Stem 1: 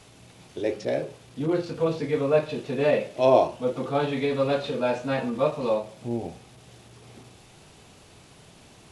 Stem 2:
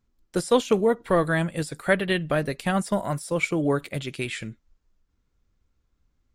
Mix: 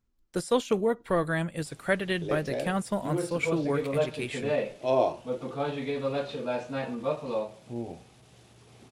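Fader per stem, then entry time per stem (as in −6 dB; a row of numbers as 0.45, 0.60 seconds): −6.0, −5.0 decibels; 1.65, 0.00 seconds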